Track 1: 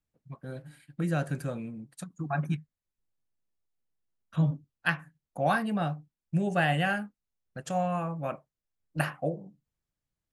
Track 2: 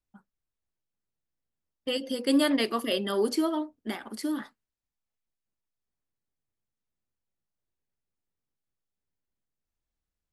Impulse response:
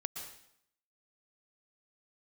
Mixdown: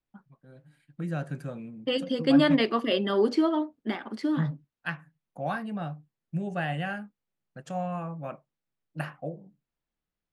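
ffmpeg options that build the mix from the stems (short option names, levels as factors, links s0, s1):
-filter_complex "[0:a]highshelf=f=6400:g=-9.5,dynaudnorm=f=230:g=7:m=4.47,volume=0.158[s0];[1:a]lowpass=3500,volume=1.33[s1];[s0][s1]amix=inputs=2:normalize=0,lowshelf=f=110:t=q:w=1.5:g=-6"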